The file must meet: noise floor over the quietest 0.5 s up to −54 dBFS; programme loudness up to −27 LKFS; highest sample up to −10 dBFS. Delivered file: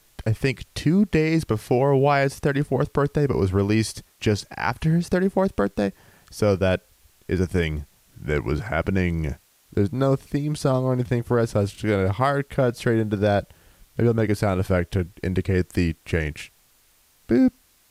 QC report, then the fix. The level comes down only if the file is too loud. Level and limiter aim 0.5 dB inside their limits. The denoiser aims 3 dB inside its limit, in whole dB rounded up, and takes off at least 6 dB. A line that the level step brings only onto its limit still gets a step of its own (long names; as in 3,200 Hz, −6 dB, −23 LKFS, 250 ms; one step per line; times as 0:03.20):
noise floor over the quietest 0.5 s −60 dBFS: in spec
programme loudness −23.0 LKFS: out of spec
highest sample −7.0 dBFS: out of spec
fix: level −4.5 dB